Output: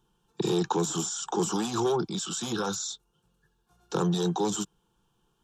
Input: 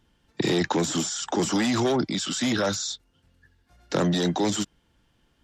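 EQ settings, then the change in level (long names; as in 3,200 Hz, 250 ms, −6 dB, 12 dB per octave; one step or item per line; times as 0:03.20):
low-shelf EQ 160 Hz −4 dB
parametric band 4,700 Hz −7 dB 0.42 octaves
phaser with its sweep stopped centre 400 Hz, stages 8
0.0 dB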